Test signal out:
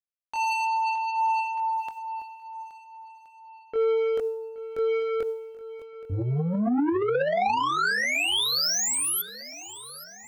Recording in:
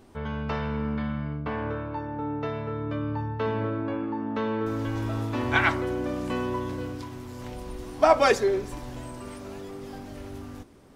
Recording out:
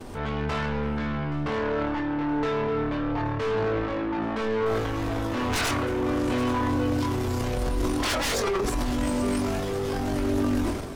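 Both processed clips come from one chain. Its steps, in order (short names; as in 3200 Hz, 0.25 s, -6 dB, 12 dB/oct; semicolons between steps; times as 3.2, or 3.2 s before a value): expander -49 dBFS; sine folder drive 18 dB, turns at -6 dBFS; limiter -16 dBFS; soft clip -21 dBFS; chorus voices 6, 0.2 Hz, delay 22 ms, depth 2.3 ms; transient shaper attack -3 dB, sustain +10 dB; swung echo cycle 1.372 s, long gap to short 1.5:1, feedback 32%, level -17 dB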